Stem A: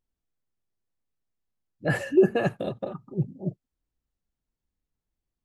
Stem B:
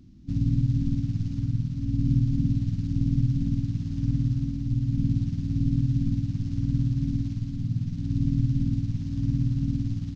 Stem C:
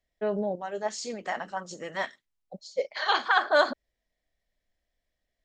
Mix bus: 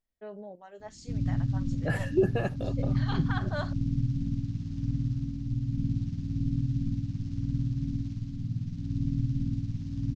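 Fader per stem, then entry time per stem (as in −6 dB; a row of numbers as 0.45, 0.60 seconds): −6.0, −5.0, −14.0 decibels; 0.00, 0.80, 0.00 seconds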